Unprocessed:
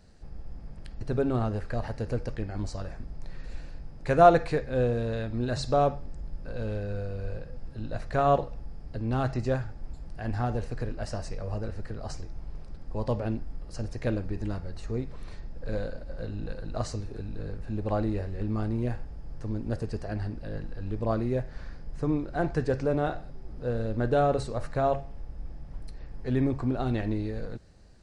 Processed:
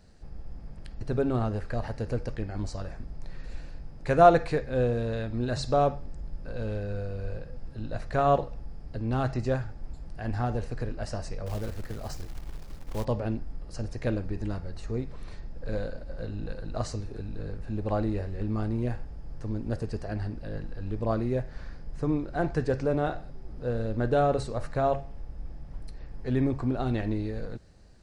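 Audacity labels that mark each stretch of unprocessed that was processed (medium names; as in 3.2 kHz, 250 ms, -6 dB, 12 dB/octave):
11.460000	13.050000	short-mantissa float mantissa of 2-bit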